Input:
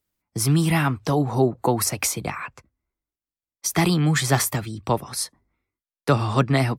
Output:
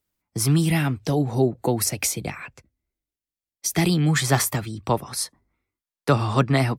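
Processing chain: 0.58–4.09 bell 1100 Hz -10.5 dB 0.84 oct

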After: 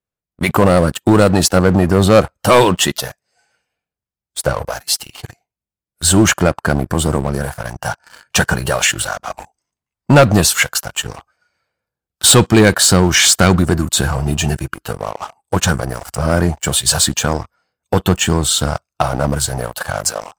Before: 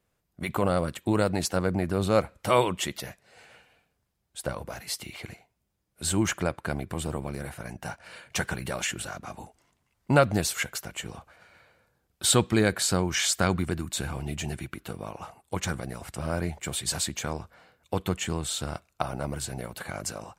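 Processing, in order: spectral noise reduction 13 dB; sample leveller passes 3; gain +5 dB

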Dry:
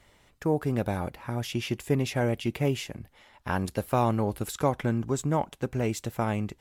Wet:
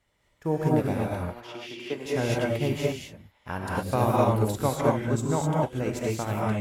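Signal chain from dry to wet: 1.21–2.06 three-band isolator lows -22 dB, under 280 Hz, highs -14 dB, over 4900 Hz; non-linear reverb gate 0.27 s rising, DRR -3.5 dB; upward expander 1.5:1, over -44 dBFS

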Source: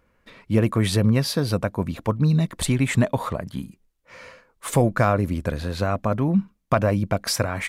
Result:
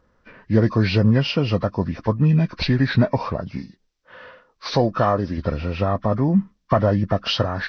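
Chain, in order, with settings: nonlinear frequency compression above 1000 Hz 1.5:1; 3.57–5.38 low shelf 190 Hz -7.5 dB; gain +2.5 dB

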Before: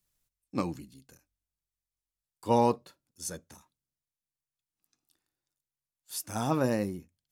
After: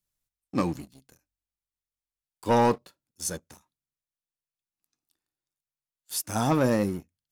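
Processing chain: sample leveller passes 2; gain -1.5 dB

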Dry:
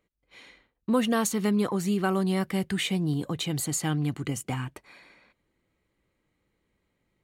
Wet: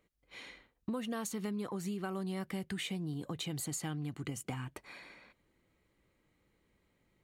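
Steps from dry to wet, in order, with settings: compressor 5:1, threshold -38 dBFS, peak gain reduction 16.5 dB; gain +1 dB

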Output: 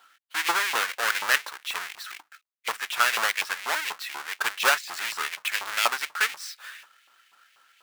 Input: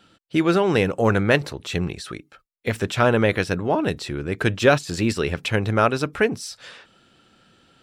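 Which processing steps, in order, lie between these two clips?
half-waves squared off; LFO high-pass saw up 4.1 Hz 950–2500 Hz; gain -7 dB

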